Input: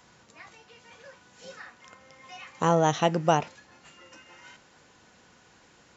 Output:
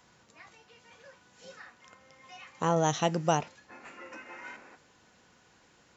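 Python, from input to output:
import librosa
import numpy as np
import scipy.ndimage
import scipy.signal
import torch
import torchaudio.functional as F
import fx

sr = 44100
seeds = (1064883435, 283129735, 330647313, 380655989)

y = fx.bass_treble(x, sr, bass_db=2, treble_db=7, at=(2.76, 3.42))
y = fx.spec_box(y, sr, start_s=3.7, length_s=1.06, low_hz=210.0, high_hz=2700.0, gain_db=11)
y = y * 10.0 ** (-4.5 / 20.0)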